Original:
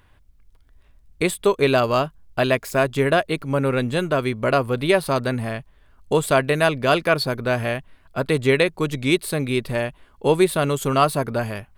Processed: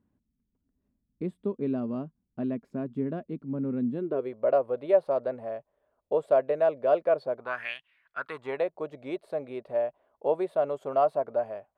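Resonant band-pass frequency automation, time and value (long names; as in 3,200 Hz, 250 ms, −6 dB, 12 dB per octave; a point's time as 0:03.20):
resonant band-pass, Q 4
0:03.90 230 Hz
0:04.32 580 Hz
0:07.35 580 Hz
0:07.76 3,300 Hz
0:08.66 630 Hz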